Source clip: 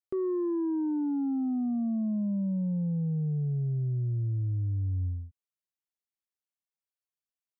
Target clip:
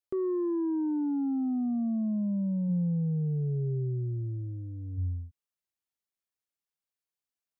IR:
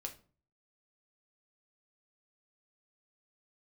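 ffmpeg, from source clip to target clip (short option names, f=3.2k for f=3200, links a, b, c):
-filter_complex "[0:a]asplit=3[a][b][c];[a]afade=t=out:st=2.68:d=0.02[d];[b]equalizer=f=100:t=o:w=0.33:g=-10,equalizer=f=200:t=o:w=0.33:g=5,equalizer=f=400:t=o:w=0.33:g=11,equalizer=f=630:t=o:w=0.33:g=-8,afade=t=in:st=2.68:d=0.02,afade=t=out:st=4.97:d=0.02[e];[c]afade=t=in:st=4.97:d=0.02[f];[d][e][f]amix=inputs=3:normalize=0"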